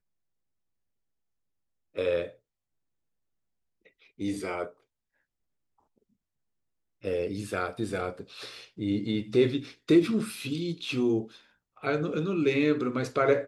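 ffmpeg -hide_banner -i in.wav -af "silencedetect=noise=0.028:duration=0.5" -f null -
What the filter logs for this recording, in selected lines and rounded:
silence_start: 0.00
silence_end: 1.98 | silence_duration: 1.98
silence_start: 2.25
silence_end: 4.21 | silence_duration: 1.96
silence_start: 4.66
silence_end: 7.05 | silence_duration: 2.40
silence_start: 11.22
silence_end: 11.84 | silence_duration: 0.62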